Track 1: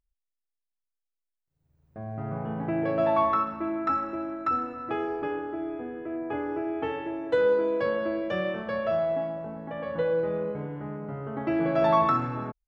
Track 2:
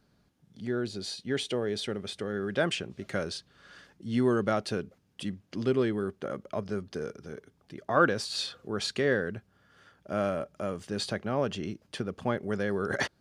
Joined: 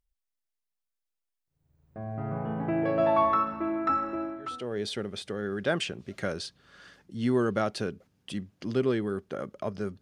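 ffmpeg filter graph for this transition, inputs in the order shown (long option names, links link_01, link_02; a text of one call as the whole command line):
ffmpeg -i cue0.wav -i cue1.wav -filter_complex "[0:a]apad=whole_dur=10.01,atrim=end=10.01,atrim=end=4.8,asetpts=PTS-STARTPTS[link_01];[1:a]atrim=start=1.15:end=6.92,asetpts=PTS-STARTPTS[link_02];[link_01][link_02]acrossfade=duration=0.56:curve1=qua:curve2=qua" out.wav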